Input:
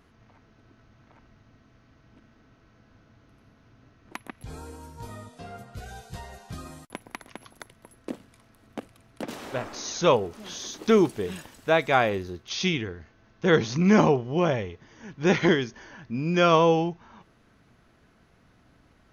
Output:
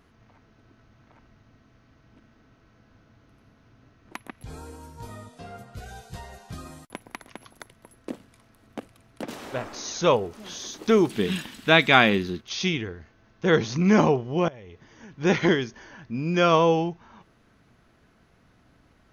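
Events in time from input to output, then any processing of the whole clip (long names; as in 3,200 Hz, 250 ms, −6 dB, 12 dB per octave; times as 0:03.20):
0:11.10–0:12.41: drawn EQ curve 100 Hz 0 dB, 210 Hz +12 dB, 560 Hz −1 dB, 3,500 Hz +13 dB, 5,900 Hz +4 dB
0:14.48–0:15.14: downward compressor 16 to 1, threshold −40 dBFS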